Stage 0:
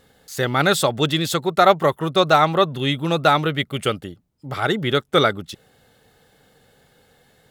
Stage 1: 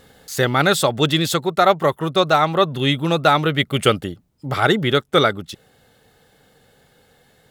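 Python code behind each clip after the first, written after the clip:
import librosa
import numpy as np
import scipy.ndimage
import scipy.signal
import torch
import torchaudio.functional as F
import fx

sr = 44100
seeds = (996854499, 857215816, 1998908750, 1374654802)

y = fx.rider(x, sr, range_db=5, speed_s=0.5)
y = F.gain(torch.from_numpy(y), 1.5).numpy()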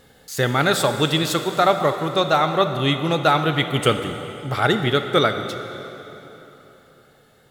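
y = fx.rev_plate(x, sr, seeds[0], rt60_s=3.6, hf_ratio=0.8, predelay_ms=0, drr_db=7.0)
y = F.gain(torch.from_numpy(y), -2.5).numpy()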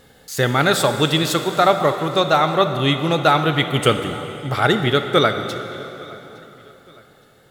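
y = fx.echo_feedback(x, sr, ms=863, feedback_pct=39, wet_db=-24)
y = F.gain(torch.from_numpy(y), 2.0).numpy()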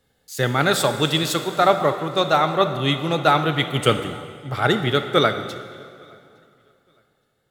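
y = fx.band_widen(x, sr, depth_pct=40)
y = F.gain(torch.from_numpy(y), -2.5).numpy()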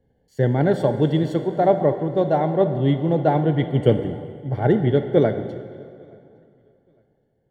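y = scipy.signal.lfilter(np.full(35, 1.0 / 35), 1.0, x)
y = F.gain(torch.from_numpy(y), 4.5).numpy()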